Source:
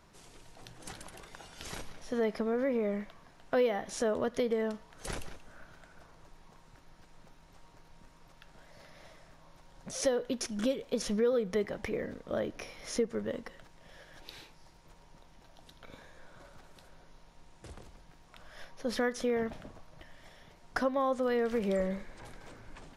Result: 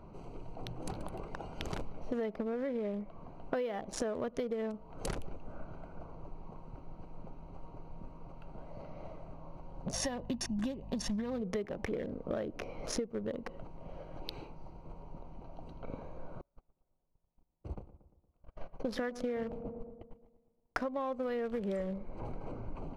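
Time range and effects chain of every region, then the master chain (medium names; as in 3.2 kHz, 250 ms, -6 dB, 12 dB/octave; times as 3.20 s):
9.92–11.41 s: comb 1.1 ms, depth 80% + mains buzz 50 Hz, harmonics 4, -51 dBFS
16.41–20.81 s: gate -48 dBFS, range -37 dB + filtered feedback delay 116 ms, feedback 56%, low-pass 2.1 kHz, level -15 dB
whole clip: local Wiener filter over 25 samples; treble shelf 5.1 kHz -5.5 dB; compression 6:1, threshold -45 dBFS; trim +11 dB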